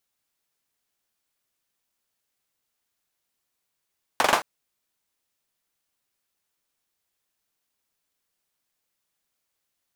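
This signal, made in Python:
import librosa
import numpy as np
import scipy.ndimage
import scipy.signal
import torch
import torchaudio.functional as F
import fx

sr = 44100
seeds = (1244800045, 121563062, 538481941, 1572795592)

y = fx.drum_clap(sr, seeds[0], length_s=0.22, bursts=4, spacing_ms=43, hz=850.0, decay_s=0.25)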